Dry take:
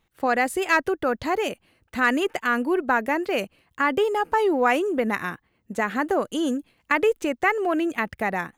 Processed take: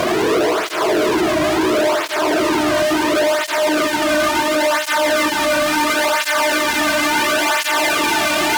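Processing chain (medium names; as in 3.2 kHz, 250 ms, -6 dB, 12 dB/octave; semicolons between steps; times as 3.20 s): rotating-head pitch shifter +3.5 st; compression, threshold -25 dBFS, peak gain reduction 9.5 dB; Paulstretch 46×, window 0.25 s, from 4.53 s; pre-echo 268 ms -16 dB; fuzz box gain 50 dB, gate -54 dBFS; cancelling through-zero flanger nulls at 0.72 Hz, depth 2.4 ms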